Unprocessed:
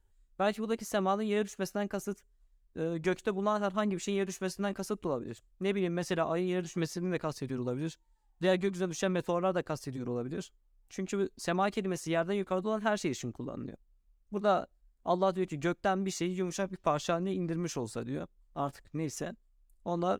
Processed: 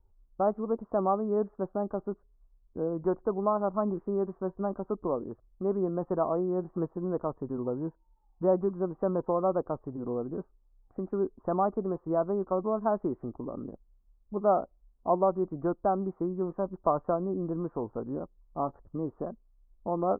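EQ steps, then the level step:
Butterworth low-pass 1,200 Hz 48 dB per octave
dynamic equaliser 120 Hz, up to −7 dB, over −49 dBFS, Q 0.92
+4.0 dB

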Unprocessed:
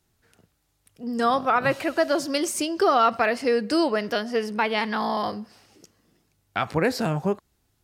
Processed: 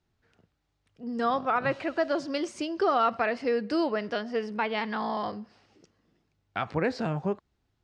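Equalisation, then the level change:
low-pass filter 11,000 Hz
high-frequency loss of the air 130 metres
−4.5 dB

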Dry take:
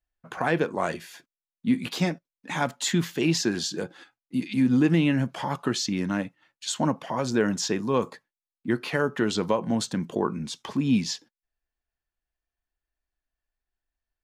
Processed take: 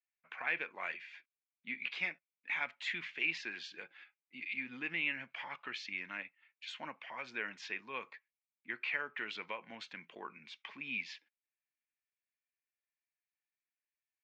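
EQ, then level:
resonant band-pass 2,300 Hz, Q 5.3
high-frequency loss of the air 140 metres
+5.0 dB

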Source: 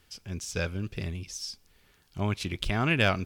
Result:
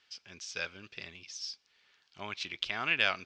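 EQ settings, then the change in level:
resonant band-pass 3,500 Hz, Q 0.5
low-pass filter 5,900 Hz 24 dB per octave
0.0 dB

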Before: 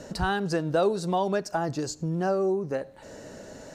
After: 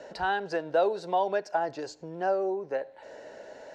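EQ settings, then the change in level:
three-way crossover with the lows and the highs turned down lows −22 dB, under 450 Hz, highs −24 dB, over 5,200 Hz
parametric band 1,200 Hz −12.5 dB 0.23 octaves
parametric band 4,600 Hz −6.5 dB 2.4 octaves
+3.5 dB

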